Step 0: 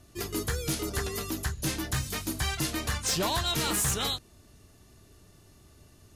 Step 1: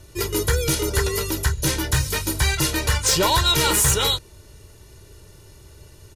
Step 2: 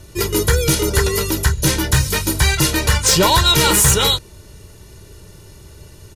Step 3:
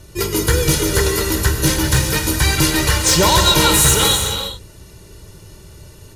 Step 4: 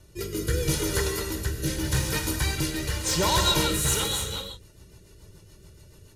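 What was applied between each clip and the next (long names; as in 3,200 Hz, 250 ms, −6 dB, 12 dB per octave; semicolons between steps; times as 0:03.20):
comb filter 2.1 ms, depth 65%; level +8 dB
parametric band 190 Hz +5.5 dB 0.58 octaves; level +5 dB
reverb whose tail is shaped and stops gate 430 ms flat, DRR 3 dB; level −1 dB
rotating-speaker cabinet horn 0.8 Hz, later 7 Hz, at 0:03.52; level −9 dB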